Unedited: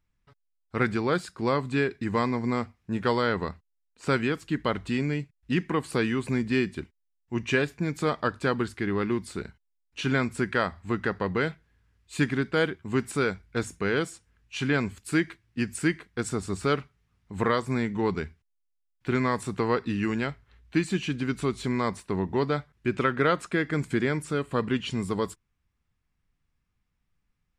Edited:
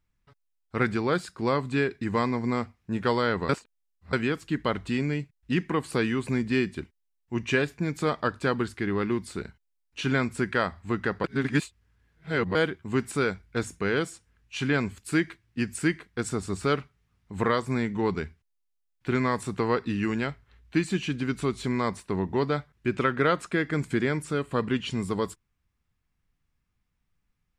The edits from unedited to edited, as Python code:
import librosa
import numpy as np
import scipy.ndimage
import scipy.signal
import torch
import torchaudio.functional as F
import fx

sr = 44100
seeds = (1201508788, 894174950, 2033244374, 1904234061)

y = fx.edit(x, sr, fx.reverse_span(start_s=3.49, length_s=0.64),
    fx.reverse_span(start_s=11.24, length_s=1.31), tone=tone)